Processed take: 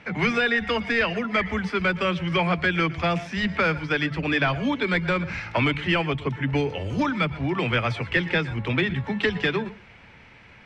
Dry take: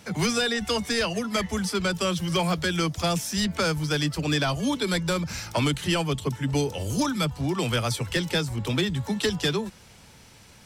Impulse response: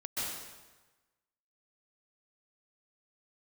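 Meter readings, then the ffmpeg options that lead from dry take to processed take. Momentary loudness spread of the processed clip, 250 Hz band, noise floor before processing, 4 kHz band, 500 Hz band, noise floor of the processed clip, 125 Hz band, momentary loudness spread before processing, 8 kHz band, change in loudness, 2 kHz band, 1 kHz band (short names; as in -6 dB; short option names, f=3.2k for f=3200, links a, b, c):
4 LU, +0.5 dB, -51 dBFS, -3.0 dB, +1.5 dB, -50 dBFS, 0.0 dB, 3 LU, under -15 dB, +2.0 dB, +7.0 dB, +3.0 dB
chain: -filter_complex "[0:a]lowpass=f=2.2k:t=q:w=2.5,bandreject=f=50:t=h:w=6,bandreject=f=100:t=h:w=6,bandreject=f=150:t=h:w=6,bandreject=f=200:t=h:w=6,asplit=2[a][b];[1:a]atrim=start_sample=2205,afade=t=out:st=0.19:d=0.01,atrim=end_sample=8820,asetrate=48510,aresample=44100[c];[b][c]afir=irnorm=-1:irlink=0,volume=-13dB[d];[a][d]amix=inputs=2:normalize=0"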